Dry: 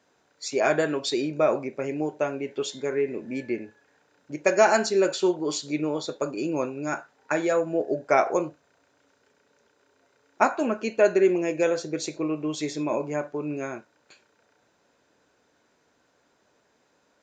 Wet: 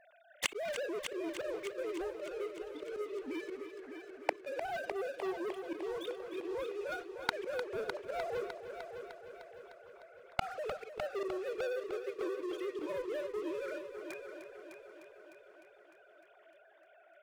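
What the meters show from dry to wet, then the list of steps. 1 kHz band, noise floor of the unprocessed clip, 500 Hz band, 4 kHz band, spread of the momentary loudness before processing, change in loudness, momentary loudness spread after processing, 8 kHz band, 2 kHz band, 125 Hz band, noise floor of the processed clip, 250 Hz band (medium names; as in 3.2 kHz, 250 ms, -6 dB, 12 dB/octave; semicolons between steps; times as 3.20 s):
-14.0 dB, -68 dBFS, -13.0 dB, -10.0 dB, 10 LU, -14.0 dB, 14 LU, -14.5 dB, -11.0 dB, -21.0 dB, -63 dBFS, -16.0 dB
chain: formants replaced by sine waves; slow attack 265 ms; in parallel at +3 dB: compression, threshold -41 dBFS, peak gain reduction 23 dB; on the sum: waveshaping leveller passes 5; inverted gate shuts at -29 dBFS, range -40 dB; on a send: multi-head delay 303 ms, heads first and second, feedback 57%, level -11 dB; on the sum: trim +16.5 dB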